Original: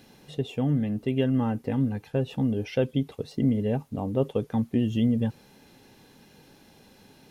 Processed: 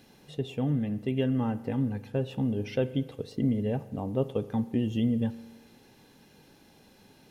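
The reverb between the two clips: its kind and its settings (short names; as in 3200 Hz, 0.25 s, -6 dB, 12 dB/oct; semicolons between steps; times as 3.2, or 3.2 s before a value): spring tank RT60 1.2 s, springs 39 ms, chirp 60 ms, DRR 14.5 dB; gain -3 dB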